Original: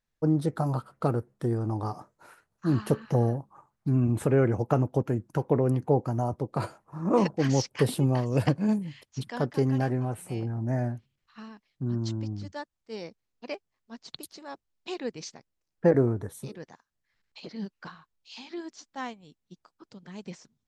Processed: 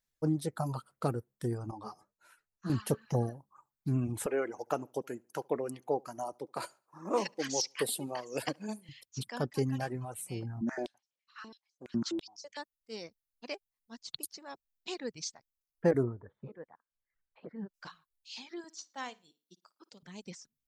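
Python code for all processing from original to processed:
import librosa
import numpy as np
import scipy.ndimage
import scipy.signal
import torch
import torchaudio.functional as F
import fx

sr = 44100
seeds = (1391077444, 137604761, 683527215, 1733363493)

y = fx.chain(x, sr, fx.high_shelf(hz=8000.0, db=-8.5),
    fx.ensemble(), at=(1.71, 2.7))
y = fx.chain(y, sr, fx.highpass(hz=350.0, slope=12),
    fx.echo_feedback(ms=71, feedback_pct=34, wet_db=-19), at=(4.26, 8.89))
y = fx.chain(y, sr, fx.lowpass(hz=7700.0, slope=12),
    fx.filter_held_highpass(hz=12.0, low_hz=200.0, high_hz=5800.0), at=(10.61, 12.57))
y = fx.chain(y, sr, fx.lowpass(hz=1700.0, slope=24),
    fx.peak_eq(hz=500.0, db=4.5, octaves=0.42), at=(16.03, 17.74))
y = fx.chain(y, sr, fx.highpass(hz=280.0, slope=12),
    fx.room_flutter(wall_m=9.6, rt60_s=0.33), at=(18.64, 20.03))
y = fx.dereverb_blind(y, sr, rt60_s=1.1)
y = fx.high_shelf(y, sr, hz=3400.0, db=11.0)
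y = F.gain(torch.from_numpy(y), -5.5).numpy()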